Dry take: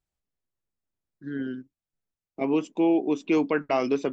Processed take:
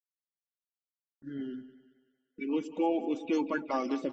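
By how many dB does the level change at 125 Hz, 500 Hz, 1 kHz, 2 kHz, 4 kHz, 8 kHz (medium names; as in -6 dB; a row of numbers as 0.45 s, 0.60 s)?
-12.0 dB, -8.0 dB, -4.0 dB, -7.0 dB, -5.5 dB, no reading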